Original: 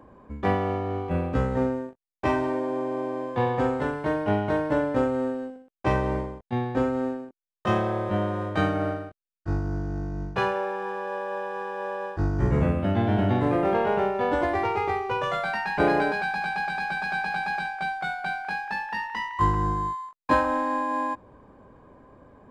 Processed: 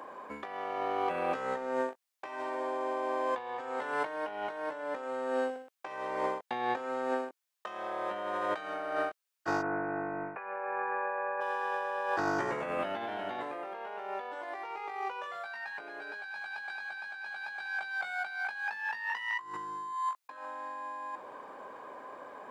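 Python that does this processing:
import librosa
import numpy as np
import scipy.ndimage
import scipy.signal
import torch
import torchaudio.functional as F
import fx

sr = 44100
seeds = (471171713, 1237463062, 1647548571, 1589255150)

y = fx.cheby1_lowpass(x, sr, hz=2600.0, order=8, at=(9.61, 11.4), fade=0.02)
y = fx.doubler(y, sr, ms=20.0, db=-2.5, at=(15.24, 20.37))
y = scipy.signal.sosfilt(scipy.signal.butter(2, 670.0, 'highpass', fs=sr, output='sos'), y)
y = fx.over_compress(y, sr, threshold_db=-40.0, ratio=-1.0)
y = y * 10.0 ** (3.0 / 20.0)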